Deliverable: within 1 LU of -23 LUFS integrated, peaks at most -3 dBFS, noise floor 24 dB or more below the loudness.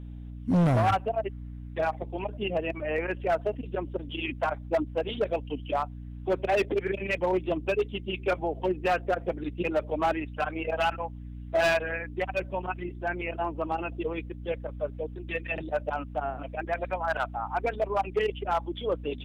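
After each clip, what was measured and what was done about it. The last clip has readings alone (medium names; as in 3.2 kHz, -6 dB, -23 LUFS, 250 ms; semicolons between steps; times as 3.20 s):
clipped samples 1.7%; clipping level -19.5 dBFS; hum 60 Hz; highest harmonic 300 Hz; hum level -38 dBFS; loudness -30.0 LUFS; peak level -19.5 dBFS; loudness target -23.0 LUFS
-> clip repair -19.5 dBFS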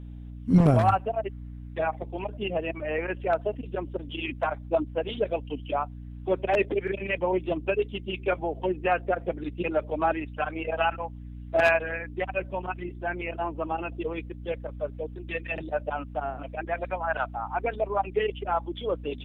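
clipped samples 0.0%; hum 60 Hz; highest harmonic 300 Hz; hum level -38 dBFS
-> hum notches 60/120/180/240/300 Hz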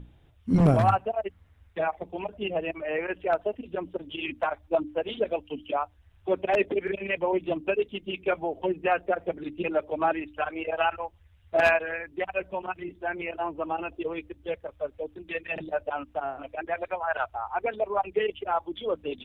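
hum not found; loudness -29.0 LUFS; peak level -10.0 dBFS; loudness target -23.0 LUFS
-> trim +6 dB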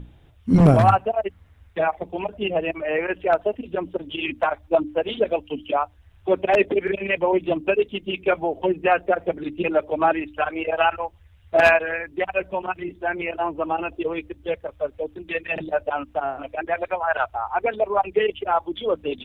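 loudness -23.0 LUFS; peak level -4.0 dBFS; noise floor -53 dBFS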